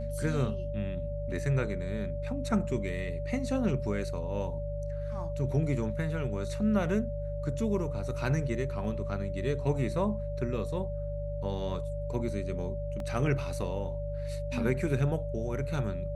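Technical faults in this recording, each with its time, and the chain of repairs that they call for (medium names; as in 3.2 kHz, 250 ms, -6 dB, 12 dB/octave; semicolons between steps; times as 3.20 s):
hum 50 Hz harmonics 3 -36 dBFS
whine 580 Hz -37 dBFS
13.00 s: dropout 2.1 ms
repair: band-stop 580 Hz, Q 30; de-hum 50 Hz, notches 3; interpolate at 13.00 s, 2.1 ms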